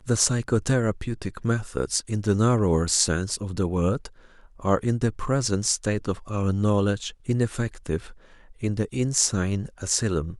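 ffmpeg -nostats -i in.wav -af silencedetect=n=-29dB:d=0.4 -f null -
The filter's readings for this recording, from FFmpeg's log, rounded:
silence_start: 4.06
silence_end: 4.64 | silence_duration: 0.58
silence_start: 7.98
silence_end: 8.63 | silence_duration: 0.65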